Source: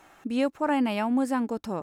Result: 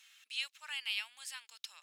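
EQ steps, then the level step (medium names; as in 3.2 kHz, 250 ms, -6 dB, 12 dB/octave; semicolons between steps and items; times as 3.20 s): ladder high-pass 2.6 kHz, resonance 35%; treble shelf 6.1 kHz -5.5 dB; +10.0 dB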